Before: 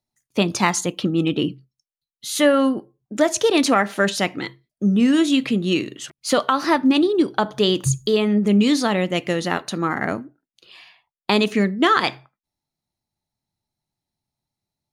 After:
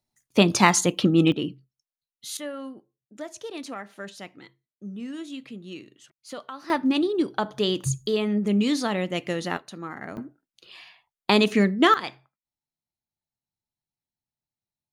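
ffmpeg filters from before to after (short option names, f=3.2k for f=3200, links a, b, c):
-af "asetnsamples=n=441:p=0,asendcmd='1.32 volume volume -7dB;2.37 volume volume -19dB;6.7 volume volume -6dB;9.57 volume volume -13.5dB;10.17 volume volume -1dB;11.94 volume volume -12dB',volume=1.5dB"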